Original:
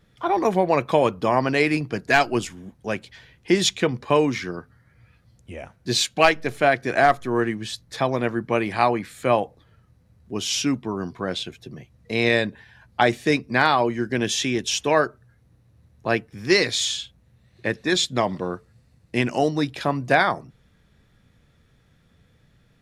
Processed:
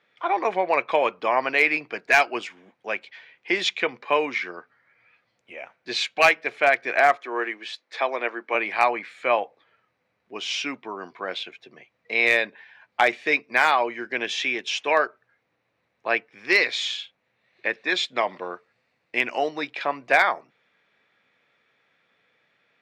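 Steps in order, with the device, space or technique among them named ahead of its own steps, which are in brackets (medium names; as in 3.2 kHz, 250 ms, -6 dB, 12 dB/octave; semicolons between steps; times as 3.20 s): megaphone (band-pass 550–3500 Hz; peaking EQ 2.3 kHz +7.5 dB 0.41 oct; hard clipper -8 dBFS, distortion -22 dB); 7.16–8.55 s: high-pass 270 Hz 24 dB/octave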